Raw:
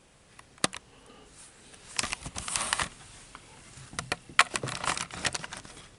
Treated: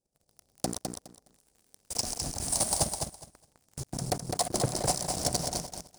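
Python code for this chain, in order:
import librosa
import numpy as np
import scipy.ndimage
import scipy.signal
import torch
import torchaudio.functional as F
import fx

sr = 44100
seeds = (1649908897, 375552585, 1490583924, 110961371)

p1 = scipy.signal.sosfilt(scipy.signal.cheby1(3, 1.0, [760.0, 4900.0], 'bandstop', fs=sr, output='sos'), x)
p2 = fx.hum_notches(p1, sr, base_hz=60, count=7)
p3 = fx.cheby_harmonics(p2, sr, harmonics=(7,), levels_db=(-30,), full_scale_db=-7.5)
p4 = fx.quant_dither(p3, sr, seeds[0], bits=12, dither='none')
p5 = fx.hpss(p4, sr, part='percussive', gain_db=-3)
p6 = fx.level_steps(p5, sr, step_db=13)
p7 = fx.leveller(p6, sr, passes=5)
y = p7 + fx.echo_feedback(p7, sr, ms=207, feedback_pct=18, wet_db=-5.0, dry=0)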